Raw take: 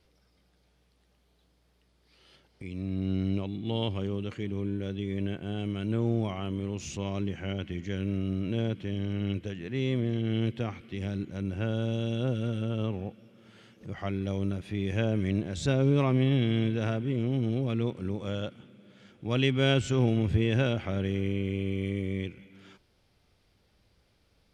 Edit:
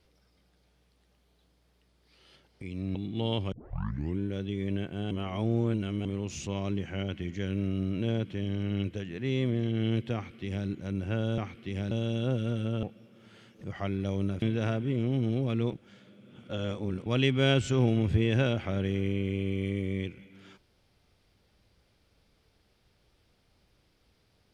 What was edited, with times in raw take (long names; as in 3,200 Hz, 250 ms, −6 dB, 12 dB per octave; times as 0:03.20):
0:02.95–0:03.45: remove
0:04.02: tape start 0.67 s
0:05.61–0:06.55: reverse
0:10.64–0:11.17: duplicate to 0:11.88
0:12.80–0:13.05: remove
0:14.64–0:16.62: remove
0:17.93–0:19.26: reverse